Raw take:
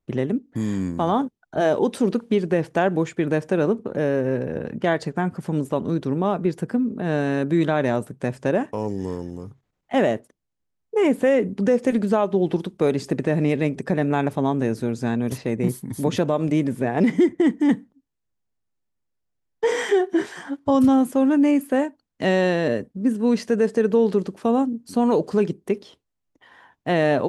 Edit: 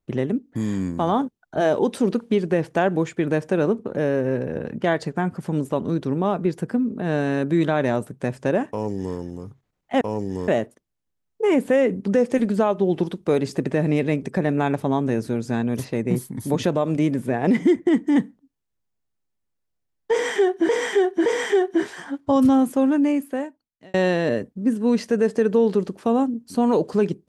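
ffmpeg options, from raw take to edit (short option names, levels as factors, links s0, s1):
-filter_complex "[0:a]asplit=6[s0][s1][s2][s3][s4][s5];[s0]atrim=end=10.012[s6];[s1]atrim=start=8.698:end=9.172[s7];[s2]atrim=start=10.008:end=20.222[s8];[s3]atrim=start=19.648:end=20.222[s9];[s4]atrim=start=19.648:end=22.33,asetpts=PTS-STARTPTS,afade=t=out:st=1.542:d=1.14[s10];[s5]atrim=start=22.33,asetpts=PTS-STARTPTS,afade=t=in:d=0.004:c=hsin[s11];[s6][s7]acrossfade=d=0.004:c1=hsin:c2=hsin[s12];[s12][s8]acrossfade=d=0.004:c1=hsin:c2=hsin[s13];[s13][s9]acrossfade=d=0.004:c1=hsin:c2=hsin[s14];[s10][s11]concat=n=2:v=0:a=1[s15];[s14][s15]acrossfade=d=0.004:c1=hsin:c2=hsin"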